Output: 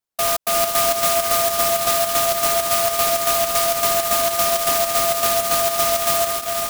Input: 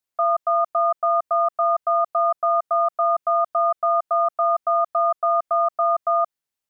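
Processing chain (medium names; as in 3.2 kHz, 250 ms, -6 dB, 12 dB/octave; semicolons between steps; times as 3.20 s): on a send: echo that smears into a reverb 463 ms, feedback 41%, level -3.5 dB; on the sum: sampling jitter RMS 0.15 ms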